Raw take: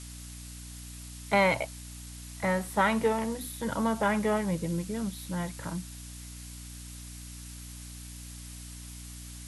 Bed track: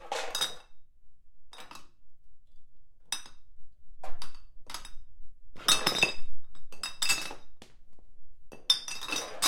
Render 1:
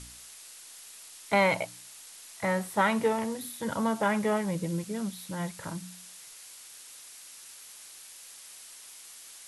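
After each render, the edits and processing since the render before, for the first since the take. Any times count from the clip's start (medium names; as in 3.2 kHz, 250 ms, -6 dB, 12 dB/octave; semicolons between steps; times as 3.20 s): de-hum 60 Hz, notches 5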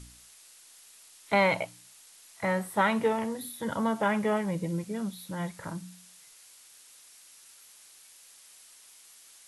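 noise print and reduce 6 dB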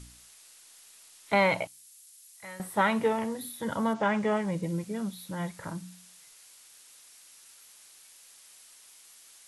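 1.67–2.60 s: pre-emphasis filter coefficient 0.9; 3.93–4.61 s: low-pass 6.6 kHz -> 11 kHz 24 dB/octave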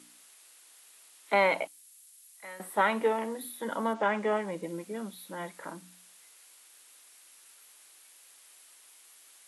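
high-pass 250 Hz 24 dB/octave; peaking EQ 5.6 kHz -5.5 dB 1.1 oct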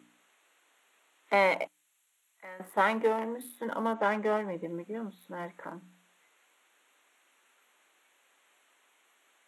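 local Wiener filter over 9 samples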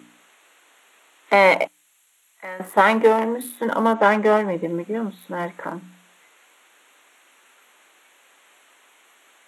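trim +12 dB; peak limiter -3 dBFS, peak gain reduction 3 dB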